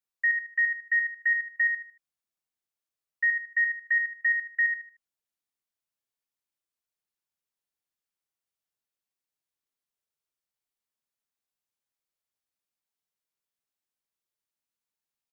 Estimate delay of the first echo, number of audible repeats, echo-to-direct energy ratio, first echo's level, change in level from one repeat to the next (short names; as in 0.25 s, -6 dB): 76 ms, 3, -5.0 dB, -5.5 dB, -11.0 dB